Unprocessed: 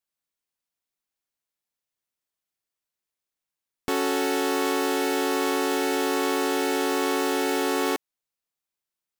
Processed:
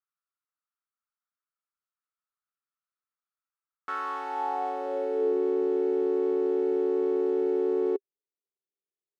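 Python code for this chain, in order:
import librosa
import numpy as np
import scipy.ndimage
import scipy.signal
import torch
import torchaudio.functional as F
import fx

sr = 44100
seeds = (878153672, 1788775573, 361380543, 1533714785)

y = fx.filter_sweep_bandpass(x, sr, from_hz=1300.0, to_hz=400.0, start_s=3.95, end_s=5.37, q=7.3)
y = y * librosa.db_to_amplitude(6.5)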